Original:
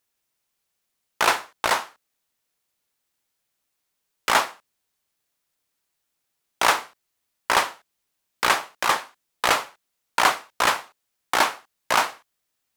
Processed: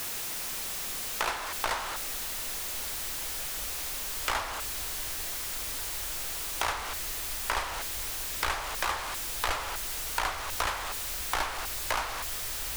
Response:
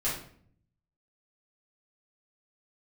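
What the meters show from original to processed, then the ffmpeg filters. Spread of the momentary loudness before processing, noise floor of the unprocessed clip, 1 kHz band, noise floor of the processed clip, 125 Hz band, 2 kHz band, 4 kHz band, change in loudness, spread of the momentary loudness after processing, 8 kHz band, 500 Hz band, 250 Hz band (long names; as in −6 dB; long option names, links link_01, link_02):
9 LU, −78 dBFS, −9.5 dB, −36 dBFS, +3.0 dB, −8.5 dB, −5.5 dB, −8.5 dB, 2 LU, 0.0 dB, −9.5 dB, −8.5 dB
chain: -filter_complex "[0:a]aeval=exprs='val(0)+0.5*0.0596*sgn(val(0))':channel_layout=same,asubboost=boost=9.5:cutoff=54,acrossover=split=130[link_01][link_02];[link_02]acompressor=threshold=-22dB:ratio=10[link_03];[link_01][link_03]amix=inputs=2:normalize=0,volume=-4.5dB"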